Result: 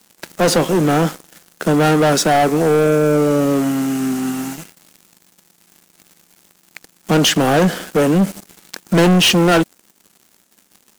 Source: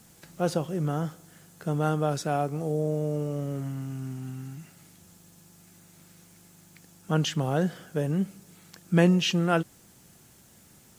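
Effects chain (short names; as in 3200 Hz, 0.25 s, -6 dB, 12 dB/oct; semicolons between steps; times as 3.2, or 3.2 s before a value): steep high-pass 190 Hz 36 dB/oct; sample leveller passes 5; gain +3 dB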